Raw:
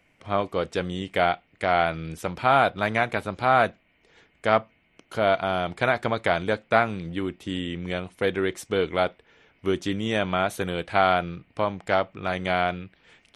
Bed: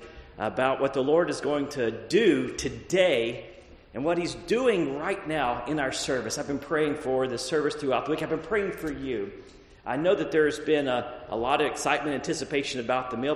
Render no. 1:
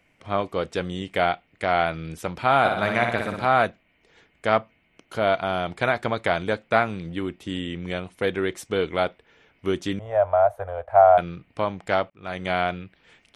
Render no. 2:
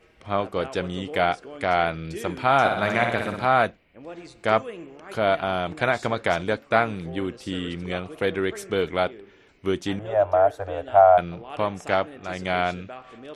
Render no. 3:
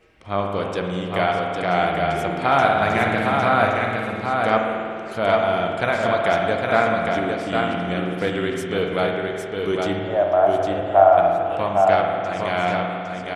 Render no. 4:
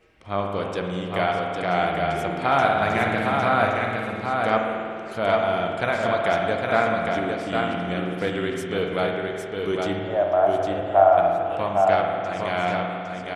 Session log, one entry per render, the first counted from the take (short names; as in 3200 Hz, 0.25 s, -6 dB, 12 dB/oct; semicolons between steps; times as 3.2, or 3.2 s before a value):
2.59–3.47 flutter echo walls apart 10.2 m, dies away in 0.74 s; 9.99–11.18 EQ curve 100 Hz 0 dB, 180 Hz -28 dB, 350 Hz -21 dB, 620 Hz +11 dB, 1100 Hz -2 dB, 1700 Hz -9 dB, 2600 Hz -21 dB, 4000 Hz -29 dB, 7800 Hz -25 dB, 12000 Hz -18 dB; 12.1–12.62 fade in equal-power
add bed -13.5 dB
on a send: echo 0.808 s -4 dB; on the sum: spring tank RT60 2.3 s, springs 50 ms, chirp 65 ms, DRR 2 dB
gain -2.5 dB